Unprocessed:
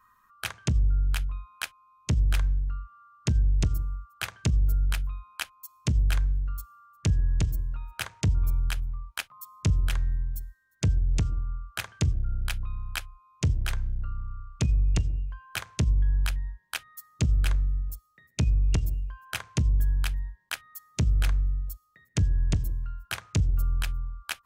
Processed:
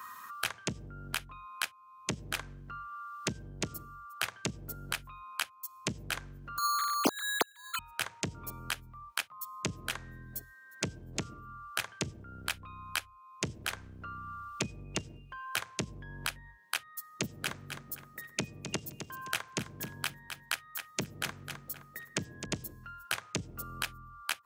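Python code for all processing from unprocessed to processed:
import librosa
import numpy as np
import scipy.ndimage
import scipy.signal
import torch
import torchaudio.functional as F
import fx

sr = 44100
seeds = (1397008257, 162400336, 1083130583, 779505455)

y = fx.chain(x, sr, fx.sine_speech(),
    fx.resample_bad(factor=8, down='filtered', up='hold'), at=(6.58, 7.79))
y = fx.chain(y, sr, fx.highpass(hz=110.0, slope=12),
    fx.echo_feedback(ms=260, feedback_pct=20, wet_db=-11.5), at=(16.91, 22.46))
y = scipy.signal.sosfilt(scipy.signal.butter(2, 250.0, 'highpass', fs=sr, output='sos'), y)
y = fx.band_squash(y, sr, depth_pct=70)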